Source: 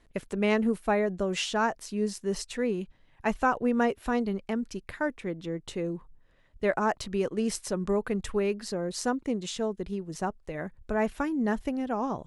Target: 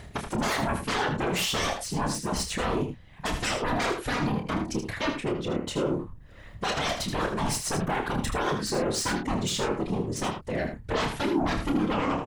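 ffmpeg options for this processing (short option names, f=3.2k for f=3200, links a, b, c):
-filter_complex "[0:a]acompressor=mode=upward:threshold=-44dB:ratio=2.5,aeval=exprs='0.266*sin(PI/2*7.08*val(0)/0.266)':c=same,afftfilt=real='hypot(re,im)*cos(2*PI*random(0))':imag='hypot(re,im)*sin(2*PI*random(1))':win_size=512:overlap=0.75,asplit=2[a][b];[b]adelay=28,volume=-7dB[c];[a][c]amix=inputs=2:normalize=0,aecho=1:1:78:0.398,volume=-7.5dB"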